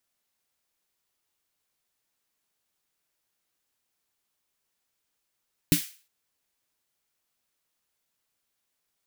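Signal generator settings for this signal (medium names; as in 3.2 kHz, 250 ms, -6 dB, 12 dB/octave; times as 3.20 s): snare drum length 0.36 s, tones 170 Hz, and 290 Hz, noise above 1.8 kHz, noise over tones -6 dB, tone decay 0.12 s, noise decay 0.39 s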